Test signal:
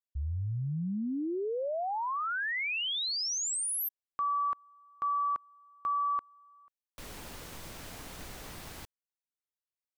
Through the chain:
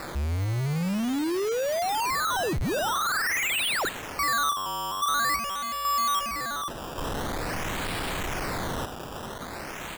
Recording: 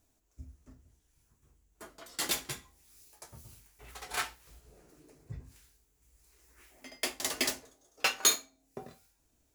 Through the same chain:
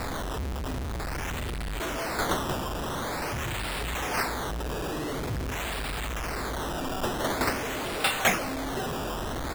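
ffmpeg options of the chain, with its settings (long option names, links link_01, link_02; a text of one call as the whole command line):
ffmpeg -i in.wav -af "aeval=exprs='val(0)+0.5*0.0501*sgn(val(0))':channel_layout=same,aecho=1:1:86:0.0794,acrusher=samples=14:mix=1:aa=0.000001:lfo=1:lforange=14:lforate=0.47" out.wav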